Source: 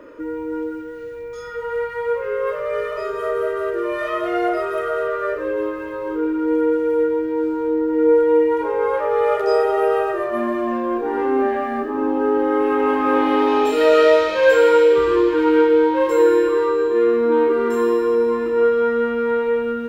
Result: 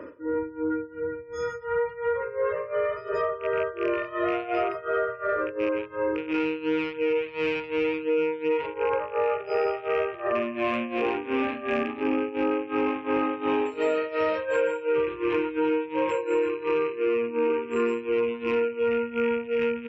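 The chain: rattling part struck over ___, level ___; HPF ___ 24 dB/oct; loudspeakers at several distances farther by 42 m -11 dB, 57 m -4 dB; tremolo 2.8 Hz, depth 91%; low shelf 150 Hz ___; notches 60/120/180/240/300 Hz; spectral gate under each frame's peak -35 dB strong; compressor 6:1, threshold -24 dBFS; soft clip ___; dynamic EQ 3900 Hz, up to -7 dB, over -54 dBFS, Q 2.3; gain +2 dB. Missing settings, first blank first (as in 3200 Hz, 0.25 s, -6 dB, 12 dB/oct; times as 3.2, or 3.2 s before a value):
-31 dBFS, -15 dBFS, 72 Hz, +9 dB, -15 dBFS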